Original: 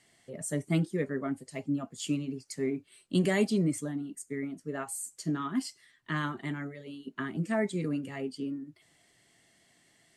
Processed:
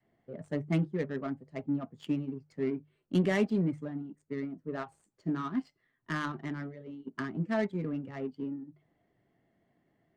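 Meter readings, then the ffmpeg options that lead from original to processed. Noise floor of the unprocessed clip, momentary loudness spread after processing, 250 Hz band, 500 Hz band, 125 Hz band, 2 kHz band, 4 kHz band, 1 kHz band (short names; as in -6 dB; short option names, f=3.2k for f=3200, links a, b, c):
-66 dBFS, 12 LU, -1.0 dB, -1.0 dB, -1.0 dB, -2.0 dB, -6.5 dB, -1.0 dB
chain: -af "adynamicequalizer=threshold=0.01:dfrequency=330:dqfactor=1.2:tfrequency=330:tqfactor=1.2:attack=5:release=100:ratio=0.375:range=2:mode=cutabove:tftype=bell,bandreject=f=50:t=h:w=6,bandreject=f=100:t=h:w=6,bandreject=f=150:t=h:w=6,adynamicsmooth=sensitivity=4:basefreq=970"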